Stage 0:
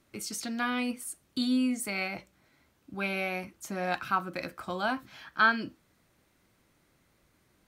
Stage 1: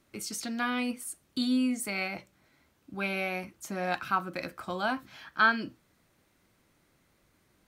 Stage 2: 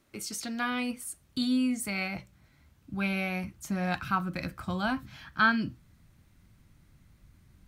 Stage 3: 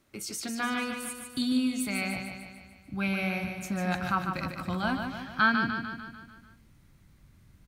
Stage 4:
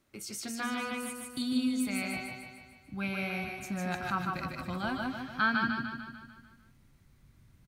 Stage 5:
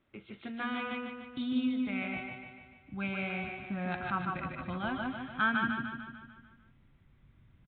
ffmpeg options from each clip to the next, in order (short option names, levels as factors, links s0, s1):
-af "bandreject=f=60:t=h:w=6,bandreject=f=120:t=h:w=6"
-af "asubboost=boost=8.5:cutoff=150"
-af "aecho=1:1:148|296|444|592|740|888|1036:0.501|0.276|0.152|0.0834|0.0459|0.0252|0.0139"
-af "aecho=1:1:156:0.596,volume=0.596"
-af "aresample=8000,aresample=44100,volume=0.891"